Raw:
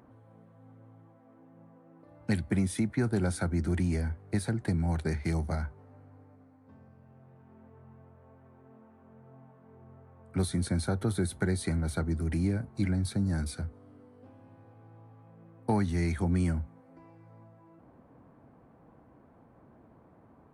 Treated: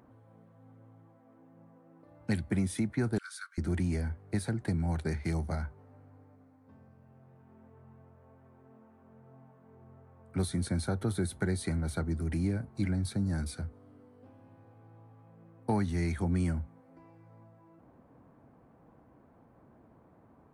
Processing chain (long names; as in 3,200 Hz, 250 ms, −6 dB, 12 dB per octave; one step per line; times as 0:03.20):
0:03.18–0:03.58: Chebyshev high-pass with heavy ripple 1,100 Hz, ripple 6 dB
level −2 dB